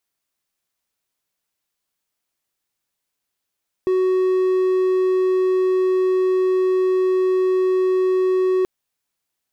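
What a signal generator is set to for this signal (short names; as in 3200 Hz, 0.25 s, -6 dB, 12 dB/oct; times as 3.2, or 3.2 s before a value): tone triangle 372 Hz -13 dBFS 4.78 s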